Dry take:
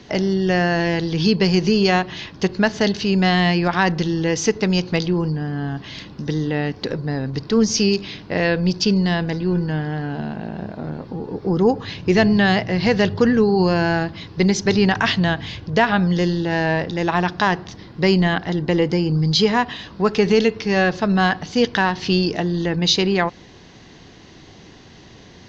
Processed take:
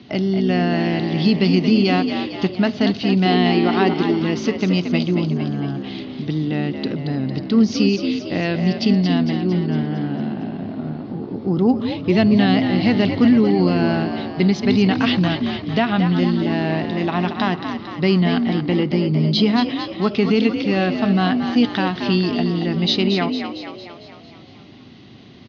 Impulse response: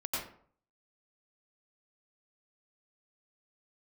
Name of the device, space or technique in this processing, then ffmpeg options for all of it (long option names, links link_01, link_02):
frequency-shifting delay pedal into a guitar cabinet: -filter_complex "[0:a]asplit=8[link_01][link_02][link_03][link_04][link_05][link_06][link_07][link_08];[link_02]adelay=227,afreqshift=57,volume=-8dB[link_09];[link_03]adelay=454,afreqshift=114,volume=-13dB[link_10];[link_04]adelay=681,afreqshift=171,volume=-18.1dB[link_11];[link_05]adelay=908,afreqshift=228,volume=-23.1dB[link_12];[link_06]adelay=1135,afreqshift=285,volume=-28.1dB[link_13];[link_07]adelay=1362,afreqshift=342,volume=-33.2dB[link_14];[link_08]adelay=1589,afreqshift=399,volume=-38.2dB[link_15];[link_01][link_09][link_10][link_11][link_12][link_13][link_14][link_15]amix=inputs=8:normalize=0,highpass=98,equalizer=frequency=110:width_type=q:width=4:gain=4,equalizer=frequency=250:width_type=q:width=4:gain=6,equalizer=frequency=490:width_type=q:width=4:gain=-9,equalizer=frequency=940:width_type=q:width=4:gain=-7,equalizer=frequency=1700:width_type=q:width=4:gain=-9,lowpass=frequency=4300:width=0.5412,lowpass=frequency=4300:width=1.3066,asettb=1/sr,asplit=3[link_16][link_17][link_18];[link_16]atrim=end=3.254[link_19];[link_17]atrim=start=3.25:end=4.22,asetpts=PTS-STARTPTS,afade=type=in:duration=0.004:curve=qsin,afade=type=out:start_time=0.966:duration=0.004:curve=qsin,equalizer=frequency=160:width_type=o:width=0.33:gain=-6,equalizer=frequency=400:width_type=o:width=0.33:gain=11,equalizer=frequency=800:width_type=o:width=0.33:gain=4[link_20];[link_18]atrim=start=4.216[link_21];[link_19][link_20]acrossfade=duration=0.004:curve1=hsin:curve2=qsin[link_22];[link_22][link_21]acrossfade=duration=0.004:curve1=qsin:curve2=hsin"